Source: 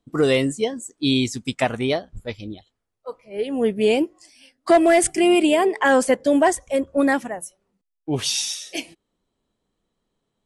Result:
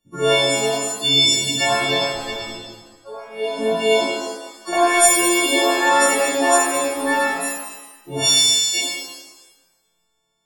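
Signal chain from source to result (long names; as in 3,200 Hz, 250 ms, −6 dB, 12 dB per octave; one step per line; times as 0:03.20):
every partial snapped to a pitch grid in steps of 4 semitones
0:03.93–0:04.73: downward compressor, threshold −18 dBFS, peak gain reduction 7.5 dB
reverb with rising layers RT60 1.1 s, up +7 semitones, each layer −8 dB, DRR −6.5 dB
level −6 dB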